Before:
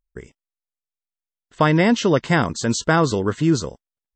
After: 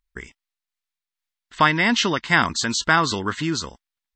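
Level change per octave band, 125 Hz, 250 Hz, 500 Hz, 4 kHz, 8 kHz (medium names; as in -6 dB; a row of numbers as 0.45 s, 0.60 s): -7.5 dB, -6.0 dB, -8.0 dB, +5.5 dB, +1.5 dB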